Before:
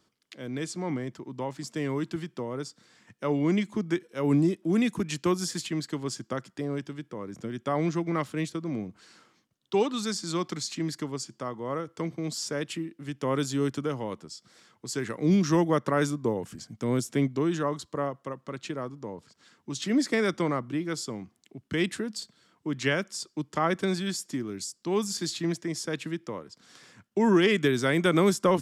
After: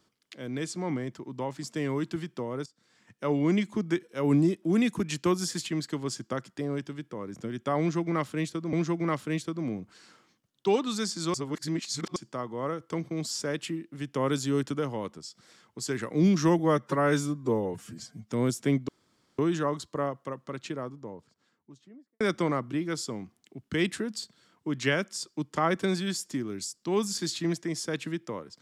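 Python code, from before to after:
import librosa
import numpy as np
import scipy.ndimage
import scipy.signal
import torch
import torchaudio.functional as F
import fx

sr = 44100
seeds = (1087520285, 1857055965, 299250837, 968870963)

y = fx.studio_fade_out(x, sr, start_s=18.42, length_s=1.78)
y = fx.edit(y, sr, fx.fade_in_from(start_s=2.66, length_s=0.64, floor_db=-17.0),
    fx.repeat(start_s=7.8, length_s=0.93, count=2),
    fx.reverse_span(start_s=10.41, length_s=0.82),
    fx.stretch_span(start_s=15.66, length_s=1.15, factor=1.5),
    fx.insert_room_tone(at_s=17.38, length_s=0.5), tone=tone)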